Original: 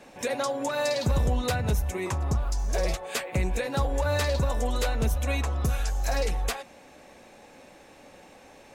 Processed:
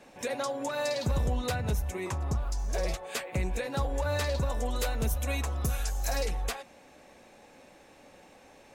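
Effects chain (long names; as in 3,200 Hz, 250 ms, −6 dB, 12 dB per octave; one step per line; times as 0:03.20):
0:04.78–0:06.25: high-shelf EQ 10,000 Hz → 6,300 Hz +10 dB
level −4 dB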